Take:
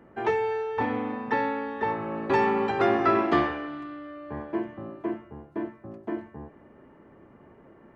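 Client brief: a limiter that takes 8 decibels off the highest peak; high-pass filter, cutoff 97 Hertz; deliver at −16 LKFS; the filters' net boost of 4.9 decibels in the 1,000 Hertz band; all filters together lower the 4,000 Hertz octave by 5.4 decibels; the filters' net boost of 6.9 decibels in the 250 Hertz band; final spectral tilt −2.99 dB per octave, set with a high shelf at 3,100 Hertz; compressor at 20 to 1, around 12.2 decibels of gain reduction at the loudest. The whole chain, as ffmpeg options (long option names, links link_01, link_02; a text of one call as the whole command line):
ffmpeg -i in.wav -af "highpass=97,equalizer=frequency=250:width_type=o:gain=9,equalizer=frequency=1000:width_type=o:gain=6.5,highshelf=frequency=3100:gain=-6.5,equalizer=frequency=4000:width_type=o:gain=-3.5,acompressor=threshold=-25dB:ratio=20,volume=17dB,alimiter=limit=-6.5dB:level=0:latency=1" out.wav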